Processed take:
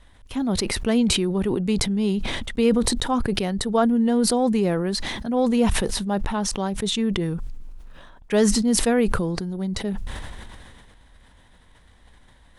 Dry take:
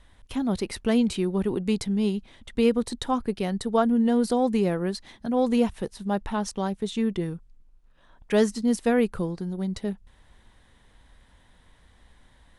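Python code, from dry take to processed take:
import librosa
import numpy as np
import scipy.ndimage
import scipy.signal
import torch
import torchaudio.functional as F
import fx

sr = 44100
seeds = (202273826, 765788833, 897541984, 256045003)

y = fx.sustainer(x, sr, db_per_s=25.0)
y = y * 10.0 ** (1.5 / 20.0)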